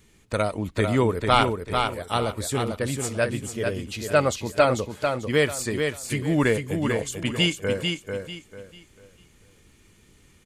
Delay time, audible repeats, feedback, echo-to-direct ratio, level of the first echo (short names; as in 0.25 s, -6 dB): 0.444 s, 3, 28%, -4.5 dB, -5.0 dB